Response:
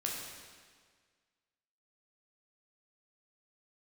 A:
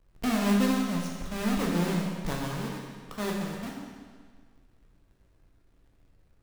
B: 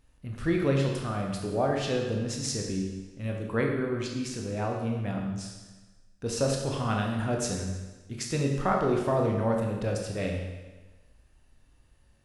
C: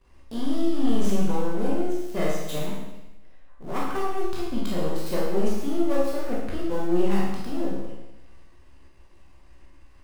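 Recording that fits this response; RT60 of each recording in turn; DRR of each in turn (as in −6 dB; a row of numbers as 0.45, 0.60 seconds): A; 1.7, 1.2, 0.95 seconds; −2.5, 0.5, −6.5 decibels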